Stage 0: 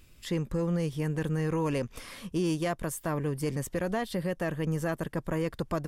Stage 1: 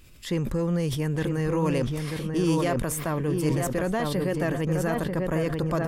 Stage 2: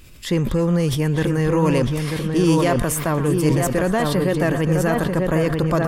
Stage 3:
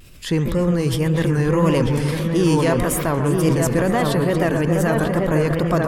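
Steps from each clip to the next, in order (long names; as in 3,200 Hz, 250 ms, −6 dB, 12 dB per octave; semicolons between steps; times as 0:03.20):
on a send: feedback echo with a low-pass in the loop 940 ms, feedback 29%, low-pass 1,800 Hz, level −4.5 dB; on the sum: level that may fall only so fast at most 31 dB per second; level +3 dB
echo through a band-pass that steps 118 ms, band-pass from 1,200 Hz, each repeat 1.4 octaves, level −8.5 dB; level +7 dB
bucket-brigade delay 137 ms, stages 2,048, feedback 63%, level −8.5 dB; tape wow and flutter 95 cents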